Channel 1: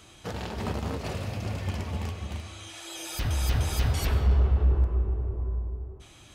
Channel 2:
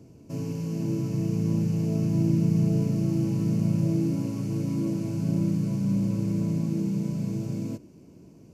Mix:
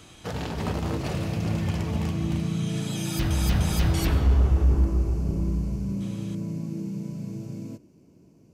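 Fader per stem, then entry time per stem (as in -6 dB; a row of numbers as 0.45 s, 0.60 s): +2.0 dB, -5.0 dB; 0.00 s, 0.00 s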